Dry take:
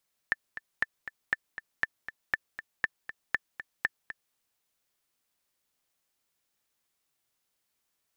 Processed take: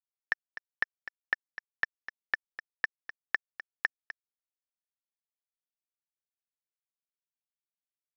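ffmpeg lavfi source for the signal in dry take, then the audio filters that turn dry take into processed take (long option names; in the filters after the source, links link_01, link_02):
-f lavfi -i "aevalsrc='pow(10,(-12-12.5*gte(mod(t,2*60/238),60/238))/20)*sin(2*PI*1770*mod(t,60/238))*exp(-6.91*mod(t,60/238)/0.03)':duration=4.03:sample_rate=44100"
-af "bass=frequency=250:gain=-10,treble=frequency=4000:gain=5,aresample=11025,aeval=exprs='sgn(val(0))*max(abs(val(0))-0.00473,0)':channel_layout=same,aresample=44100"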